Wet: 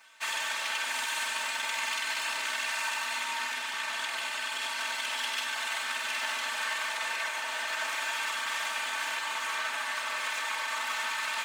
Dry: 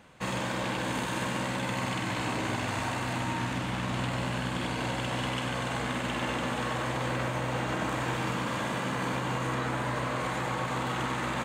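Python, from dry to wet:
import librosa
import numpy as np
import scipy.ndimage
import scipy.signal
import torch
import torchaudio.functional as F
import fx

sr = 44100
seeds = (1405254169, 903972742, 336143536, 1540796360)

y = fx.lower_of_two(x, sr, delay_ms=3.3)
y = scipy.signal.sosfilt(scipy.signal.butter(2, 1400.0, 'highpass', fs=sr, output='sos'), y)
y = y + 0.56 * np.pad(y, (int(4.5 * sr / 1000.0), 0))[:len(y)]
y = F.gain(torch.from_numpy(y), 4.5).numpy()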